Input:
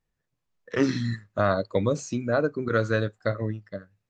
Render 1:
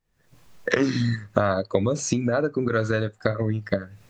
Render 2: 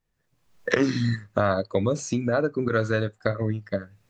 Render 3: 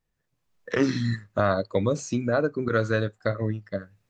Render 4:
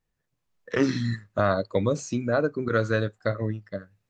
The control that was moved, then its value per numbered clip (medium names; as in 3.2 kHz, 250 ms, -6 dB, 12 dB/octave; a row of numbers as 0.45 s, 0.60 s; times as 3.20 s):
recorder AGC, rising by: 77 dB/s, 32 dB/s, 12 dB/s, 5 dB/s